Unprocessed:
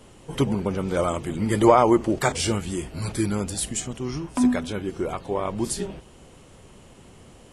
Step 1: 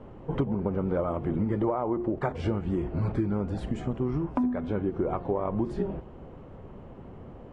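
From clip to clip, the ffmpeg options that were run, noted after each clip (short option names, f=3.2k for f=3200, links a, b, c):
-af "lowpass=1.1k,bandreject=f=355:t=h:w=4,bandreject=f=710:t=h:w=4,bandreject=f=1.065k:t=h:w=4,bandreject=f=1.42k:t=h:w=4,bandreject=f=1.775k:t=h:w=4,bandreject=f=2.13k:t=h:w=4,bandreject=f=2.485k:t=h:w=4,bandreject=f=2.84k:t=h:w=4,bandreject=f=3.195k:t=h:w=4,bandreject=f=3.55k:t=h:w=4,bandreject=f=3.905k:t=h:w=4,bandreject=f=4.26k:t=h:w=4,bandreject=f=4.615k:t=h:w=4,bandreject=f=4.97k:t=h:w=4,bandreject=f=5.325k:t=h:w=4,bandreject=f=5.68k:t=h:w=4,bandreject=f=6.035k:t=h:w=4,bandreject=f=6.39k:t=h:w=4,bandreject=f=6.745k:t=h:w=4,bandreject=f=7.1k:t=h:w=4,bandreject=f=7.455k:t=h:w=4,bandreject=f=7.81k:t=h:w=4,bandreject=f=8.165k:t=h:w=4,bandreject=f=8.52k:t=h:w=4,bandreject=f=8.875k:t=h:w=4,bandreject=f=9.23k:t=h:w=4,bandreject=f=9.585k:t=h:w=4,bandreject=f=9.94k:t=h:w=4,acompressor=threshold=-28dB:ratio=16,volume=4.5dB"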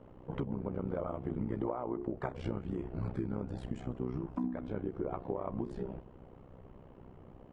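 -af "tremolo=f=63:d=0.857,volume=-5dB"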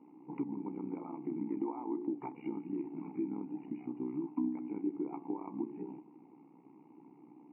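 -filter_complex "[0:a]asplit=3[a][b][c];[a]bandpass=f=300:t=q:w=8,volume=0dB[d];[b]bandpass=f=870:t=q:w=8,volume=-6dB[e];[c]bandpass=f=2.24k:t=q:w=8,volume=-9dB[f];[d][e][f]amix=inputs=3:normalize=0,bandreject=f=285.1:t=h:w=4,bandreject=f=570.2:t=h:w=4,bandreject=f=855.3:t=h:w=4,bandreject=f=1.1404k:t=h:w=4,bandreject=f=1.4255k:t=h:w=4,bandreject=f=1.7106k:t=h:w=4,bandreject=f=1.9957k:t=h:w=4,afftfilt=real='re*between(b*sr/4096,120,2900)':imag='im*between(b*sr/4096,120,2900)':win_size=4096:overlap=0.75,volume=9dB"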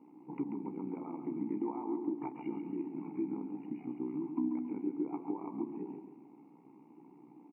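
-af "aecho=1:1:138|276|414|552:0.398|0.155|0.0606|0.0236"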